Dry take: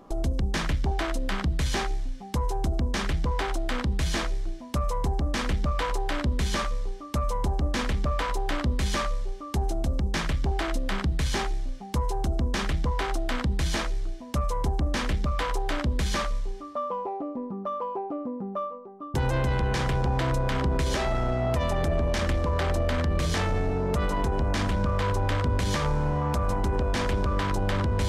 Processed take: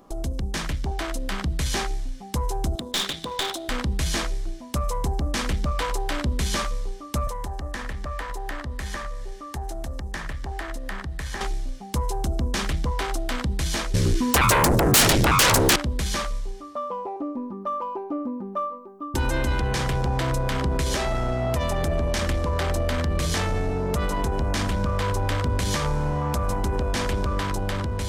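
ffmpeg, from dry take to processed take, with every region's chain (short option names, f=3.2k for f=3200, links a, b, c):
-filter_complex "[0:a]asettb=1/sr,asplit=3[a][b][c];[a]atrim=end=2.754[d];[b]atrim=start=2.75:end=3.69,asetpts=PTS-STARTPTS,afade=t=in:d=0.004:c=qsin,afade=t=out:st=0.936:d=0.004:c=qsin,highpass=240,equalizer=f=3.6k:t=o:w=0.39:g=15,aeval=exprs='clip(val(0),-1,0.0398)':c=same[e];[c]atrim=start=3.686[f];[d][e]acrossfade=d=0.004:c1=hsin:c2=qsin[g];[g][f]acrossfade=d=0.004:c1=qsin:c2=hsin,asettb=1/sr,asplit=3[h][i][j];[h]atrim=end=7.274[k];[i]atrim=start=7.27:end=11.41,asetpts=PTS-STARTPTS,afade=t=in:d=0.004:c=qsin,afade=t=out:st=4.136:d=0.004:c=qsin,equalizer=f=1.8k:w=6.5:g=8.5,acrossover=split=100|610|1700[l][m][n][o];[l]acompressor=threshold=-33dB:ratio=3[p];[m]acompressor=threshold=-44dB:ratio=3[q];[n]acompressor=threshold=-37dB:ratio=3[r];[o]acompressor=threshold=-48dB:ratio=3[s];[p][q][r][s]amix=inputs=4:normalize=0[t];[j]atrim=start=11.406[u];[k][t]acrossfade=d=0.004:c1=hsin:c2=qsin[v];[v][u]acrossfade=d=0.004:c1=qsin:c2=hsin,asettb=1/sr,asplit=3[w][x][y];[w]atrim=end=13.944[z];[x]atrim=start=13.94:end=15.76,asetpts=PTS-STARTPTS,afade=t=in:d=0.004:c=qsin,afade=t=out:st=1.816:d=0.004:c=qsin,asuperstop=centerf=690:order=8:qfactor=1.5,aeval=exprs='0.168*sin(PI/2*6.31*val(0)/0.168)':c=same[aa];[y]atrim=start=15.756[ab];[z][aa]acrossfade=d=0.004:c1=hsin:c2=qsin[ac];[ac][ab]acrossfade=d=0.004:c1=qsin:c2=hsin,asettb=1/sr,asplit=3[ad][ae][af];[ad]atrim=end=17.164[ag];[ae]atrim=start=17.16:end=19.61,asetpts=PTS-STARTPTS,afade=t=in:d=0.004:c=qsin,afade=t=out:st=2.446:d=0.004:c=qsin,equalizer=f=620:w=6:g=-6.5,aecho=1:1:3.3:0.68,atrim=end_sample=108045[ah];[af]atrim=start=19.606[ai];[ag][ah]acrossfade=d=0.004:c1=hsin:c2=qsin[aj];[aj][ai]acrossfade=d=0.004:c1=qsin:c2=hsin,highshelf=f=6.1k:g=9.5,dynaudnorm=f=910:g=3:m=3dB,volume=-2dB"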